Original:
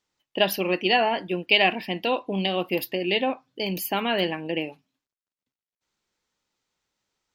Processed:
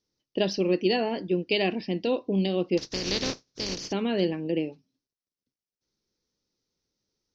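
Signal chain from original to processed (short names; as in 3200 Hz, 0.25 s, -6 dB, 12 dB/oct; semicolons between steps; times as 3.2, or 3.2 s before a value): 2.77–3.91 spectral contrast lowered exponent 0.2; elliptic low-pass 5900 Hz, stop band 40 dB; band shelf 1500 Hz -13.5 dB 2.7 oct; gain +3.5 dB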